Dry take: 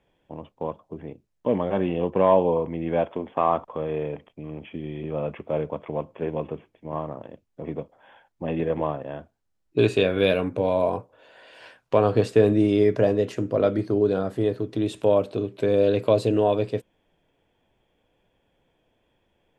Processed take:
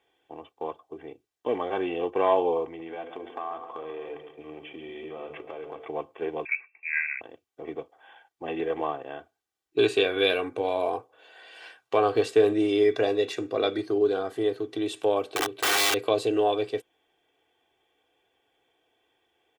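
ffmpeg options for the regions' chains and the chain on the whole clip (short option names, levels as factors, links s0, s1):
-filter_complex "[0:a]asettb=1/sr,asplit=3[s0][s1][s2];[s0]atrim=end=2.654[s3];[s1]atrim=start=2.65:end=5.88,asetpts=PTS-STARTPTS,afade=t=in:d=0.004:c=qsin,afade=t=out:st=3.226:d=0.004:c=qsin,bandreject=f=50:t=h:w=6,bandreject=f=100:t=h:w=6,bandreject=f=150:t=h:w=6,bandreject=f=200:t=h:w=6,bandreject=f=250:t=h:w=6,bandreject=f=300:t=h:w=6,bandreject=f=350:t=h:w=6,bandreject=f=400:t=h:w=6,bandreject=f=450:t=h:w=6,bandreject=f=500:t=h:w=6,acompressor=threshold=0.0316:ratio=5:attack=3.2:release=140:knee=1:detection=peak,aecho=1:1:138|276|414|552|690|828:0.316|0.164|0.0855|0.0445|0.0231|0.012,atrim=end_sample=142443[s4];[s2]atrim=start=5.876[s5];[s3][s4]acrossfade=d=0.004:c1=hsin:c2=qsin[s6];[s6][s5]acrossfade=d=0.004:c1=qsin:c2=hsin,asettb=1/sr,asplit=3[s7][s8][s9];[s7]atrim=end=6.454[s10];[s8]atrim=start=6.45:end=7.21,asetpts=PTS-STARTPTS,afade=t=in:d=0.004:c=qsin,afade=t=out:st=0.756:d=0.004:c=qsin,lowpass=f=2300:t=q:w=0.5098,lowpass=f=2300:t=q:w=0.6013,lowpass=f=2300:t=q:w=0.9,lowpass=f=2300:t=q:w=2.563,afreqshift=-2700,tiltshelf=f=1200:g=-4[s11];[s9]atrim=start=7.206[s12];[s10][s11]acrossfade=d=0.004:c1=hsin:c2=qsin[s13];[s13][s12]acrossfade=d=0.004:c1=qsin:c2=hsin,asettb=1/sr,asplit=3[s14][s15][s16];[s14]atrim=end=12.914[s17];[s15]atrim=start=12.91:end=13.82,asetpts=PTS-STARTPTS,afade=t=in:d=0.004:c=qsin,afade=t=out:st=0.906:d=0.004:c=qsin,asuperstop=centerf=3100:order=4:qfactor=7.9,equalizer=f=3400:t=o:w=0.55:g=11[s18];[s16]atrim=start=13.816[s19];[s17][s18]acrossfade=d=0.004:c1=hsin:c2=qsin[s20];[s20][s19]acrossfade=d=0.004:c1=qsin:c2=hsin,asettb=1/sr,asplit=3[s21][s22][s23];[s21]atrim=end=15.334[s24];[s22]atrim=start=15.33:end=15.94,asetpts=PTS-STARTPTS,afade=t=in:d=0.004:c=qsin,afade=t=out:st=0.606:d=0.004:c=qsin,asplit=2[s25][s26];[s26]adelay=42,volume=0.631[s27];[s25][s27]amix=inputs=2:normalize=0,atrim=end_sample=26901,aeval=exprs='(mod(8.91*val(0)+1,2)-1)/8.91':c=same[s28];[s23]atrim=start=15.936[s29];[s24][s28]acrossfade=d=0.004:c1=hsin:c2=qsin[s30];[s30][s29]acrossfade=d=0.004:c1=qsin:c2=hsin,highpass=f=630:p=1,equalizer=f=3300:t=o:w=0.23:g=3,aecho=1:1:2.6:0.66"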